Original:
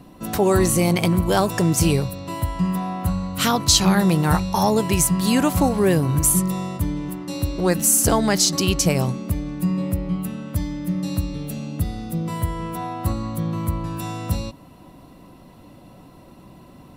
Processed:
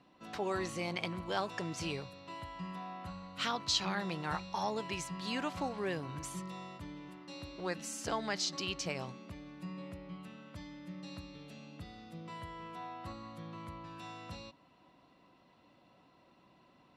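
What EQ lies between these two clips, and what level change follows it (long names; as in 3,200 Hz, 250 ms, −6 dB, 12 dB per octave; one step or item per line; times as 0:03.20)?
resonant band-pass 6,900 Hz, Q 2.1
high-frequency loss of the air 380 metres
spectral tilt −2 dB per octave
+11.5 dB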